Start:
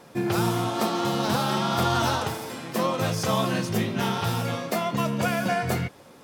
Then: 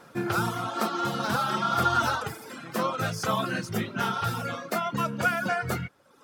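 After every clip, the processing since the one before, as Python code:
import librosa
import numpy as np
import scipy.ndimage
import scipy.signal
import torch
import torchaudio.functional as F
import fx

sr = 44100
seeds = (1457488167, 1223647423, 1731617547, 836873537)

y = fx.dereverb_blind(x, sr, rt60_s=0.94)
y = fx.peak_eq(y, sr, hz=1400.0, db=10.5, octaves=0.43)
y = y * librosa.db_to_amplitude(-3.0)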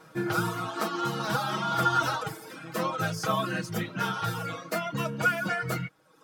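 y = x + 0.83 * np.pad(x, (int(6.3 * sr / 1000.0), 0))[:len(x)]
y = y * librosa.db_to_amplitude(-3.5)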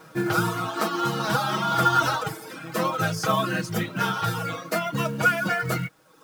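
y = fx.quant_companded(x, sr, bits=6)
y = y * librosa.db_to_amplitude(4.5)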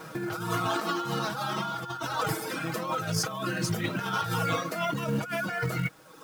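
y = fx.over_compress(x, sr, threshold_db=-31.0, ratio=-1.0)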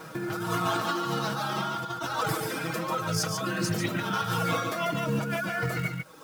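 y = x + 10.0 ** (-5.5 / 20.0) * np.pad(x, (int(143 * sr / 1000.0), 0))[:len(x)]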